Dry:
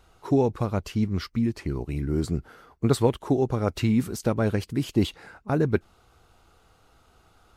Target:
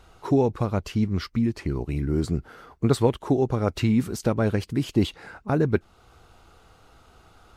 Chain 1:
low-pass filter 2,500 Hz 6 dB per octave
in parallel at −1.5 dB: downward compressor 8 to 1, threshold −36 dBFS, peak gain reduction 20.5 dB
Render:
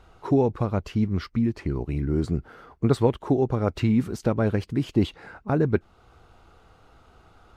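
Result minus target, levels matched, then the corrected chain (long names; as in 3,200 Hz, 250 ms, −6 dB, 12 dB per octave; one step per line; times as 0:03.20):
8,000 Hz band −7.0 dB
low-pass filter 8,500 Hz 6 dB per octave
in parallel at −1.5 dB: downward compressor 8 to 1, threshold −36 dBFS, peak gain reduction 20.5 dB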